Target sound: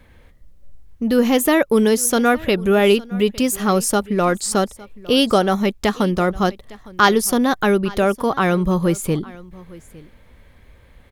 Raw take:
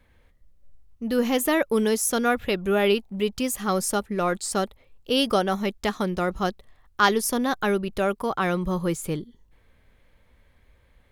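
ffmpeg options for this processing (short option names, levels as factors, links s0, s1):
-filter_complex "[0:a]equalizer=f=190:w=0.45:g=2.5,asplit=2[s0][s1];[s1]acompressor=threshold=0.02:ratio=6,volume=0.944[s2];[s0][s2]amix=inputs=2:normalize=0,aecho=1:1:858:0.0841,volume=1.58"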